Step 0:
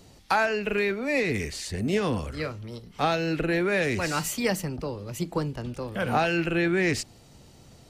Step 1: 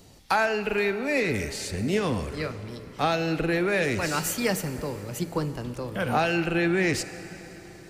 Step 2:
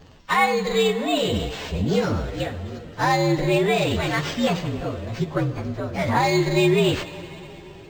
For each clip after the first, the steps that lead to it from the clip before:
high-shelf EQ 11,000 Hz +6 dB; convolution reverb RT60 4.3 s, pre-delay 28 ms, DRR 12 dB
partials spread apart or drawn together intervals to 119%; linearly interpolated sample-rate reduction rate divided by 4×; level +7.5 dB

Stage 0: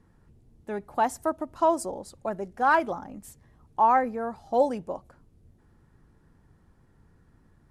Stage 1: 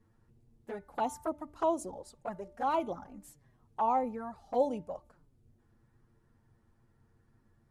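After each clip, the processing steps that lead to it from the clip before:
flanger swept by the level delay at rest 9.4 ms, full sweep at −22 dBFS
hum removal 295.8 Hz, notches 7
level −4.5 dB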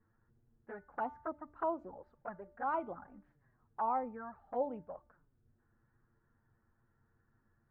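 transistor ladder low-pass 1,800 Hz, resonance 55%
level +2.5 dB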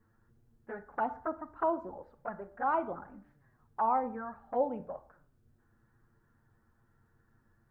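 convolution reverb RT60 0.55 s, pre-delay 23 ms, DRR 13.5 dB
level +5 dB

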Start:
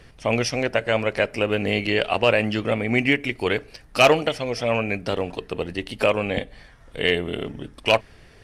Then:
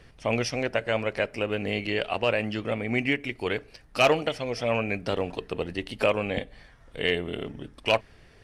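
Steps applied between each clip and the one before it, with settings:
high-shelf EQ 8,400 Hz −4 dB
speech leveller 2 s
level −5.5 dB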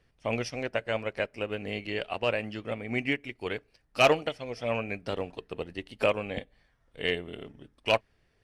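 expander for the loud parts 1.5 to 1, over −47 dBFS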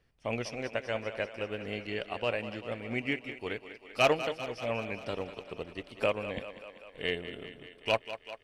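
feedback echo with a high-pass in the loop 195 ms, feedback 70%, high-pass 220 Hz, level −12 dB
level −3.5 dB

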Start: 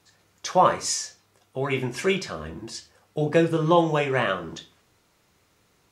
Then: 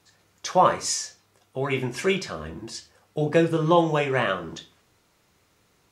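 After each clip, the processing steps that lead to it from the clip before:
no processing that can be heard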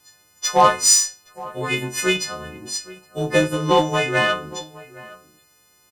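every partial snapped to a pitch grid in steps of 3 semitones
harmonic generator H 5 −28 dB, 7 −23 dB, 8 −37 dB, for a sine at −4.5 dBFS
slap from a distant wall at 140 metres, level −19 dB
level +2.5 dB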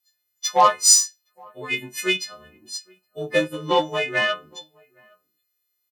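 spectral dynamics exaggerated over time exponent 1.5
high-pass filter 470 Hz 6 dB per octave
notch filter 1,500 Hz, Q 19
level +1 dB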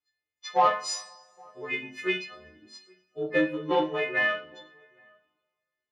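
low-pass filter 2,600 Hz 12 dB per octave
coupled-rooms reverb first 0.33 s, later 2 s, from −27 dB, DRR 0.5 dB
level −5.5 dB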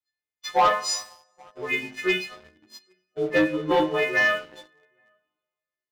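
leveller curve on the samples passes 2
level −2 dB

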